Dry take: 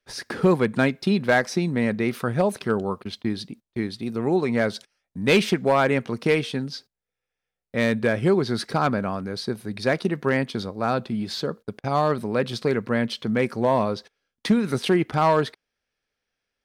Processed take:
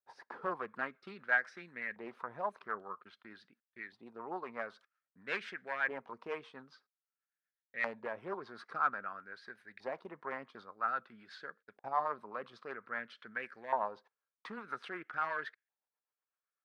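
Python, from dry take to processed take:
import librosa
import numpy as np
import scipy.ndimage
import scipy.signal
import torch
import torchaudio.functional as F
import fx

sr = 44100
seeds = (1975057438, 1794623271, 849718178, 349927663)

y = fx.rotary(x, sr, hz=8.0)
y = fx.filter_lfo_bandpass(y, sr, shape='saw_up', hz=0.51, low_hz=860.0, high_hz=1800.0, q=4.9)
y = fx.doppler_dist(y, sr, depth_ms=0.2)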